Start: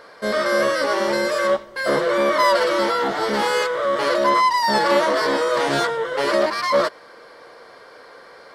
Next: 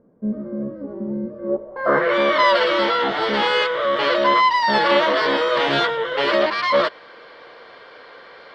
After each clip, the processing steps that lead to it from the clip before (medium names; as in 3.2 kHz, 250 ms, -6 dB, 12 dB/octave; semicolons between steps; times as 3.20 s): low-pass sweep 220 Hz -> 3.2 kHz, 1.38–2.17 s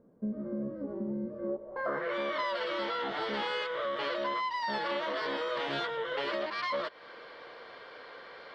compression 5:1, threshold -26 dBFS, peak gain reduction 13 dB; trim -5.5 dB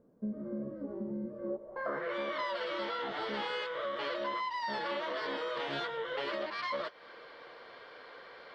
flange 0.97 Hz, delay 1.5 ms, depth 7.5 ms, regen -74%; trim +1.5 dB